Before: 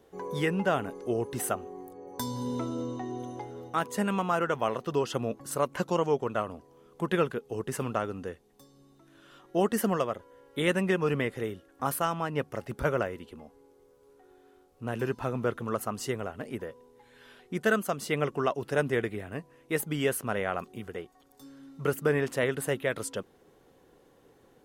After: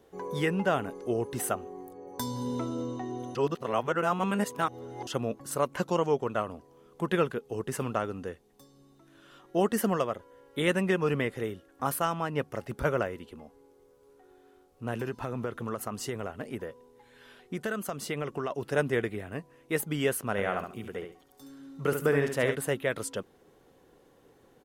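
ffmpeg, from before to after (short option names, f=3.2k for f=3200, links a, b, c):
-filter_complex "[0:a]asplit=3[a][b][c];[a]afade=t=out:st=14.98:d=0.02[d];[b]acompressor=threshold=-28dB:ratio=6:attack=3.2:release=140:knee=1:detection=peak,afade=t=in:st=14.98:d=0.02,afade=t=out:st=18.5:d=0.02[e];[c]afade=t=in:st=18.5:d=0.02[f];[d][e][f]amix=inputs=3:normalize=0,asplit=3[g][h][i];[g]afade=t=out:st=20.37:d=0.02[j];[h]aecho=1:1:70|140|210:0.447|0.103|0.0236,afade=t=in:st=20.37:d=0.02,afade=t=out:st=22.54:d=0.02[k];[i]afade=t=in:st=22.54:d=0.02[l];[j][k][l]amix=inputs=3:normalize=0,asplit=3[m][n][o];[m]atrim=end=3.352[p];[n]atrim=start=3.348:end=5.072,asetpts=PTS-STARTPTS,areverse[q];[o]atrim=start=5.068[r];[p][q]acrossfade=d=0.004:c1=hsin:c2=hsin[s];[s][r]acrossfade=d=0.004:c1=hsin:c2=hsin"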